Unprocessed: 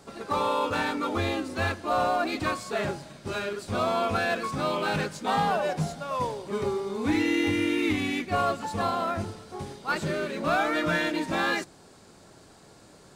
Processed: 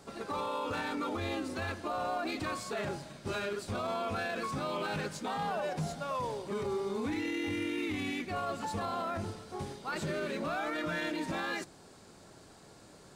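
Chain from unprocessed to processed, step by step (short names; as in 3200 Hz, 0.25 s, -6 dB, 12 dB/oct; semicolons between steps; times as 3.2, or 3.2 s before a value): limiter -24.5 dBFS, peak gain reduction 10.5 dB; gain -2.5 dB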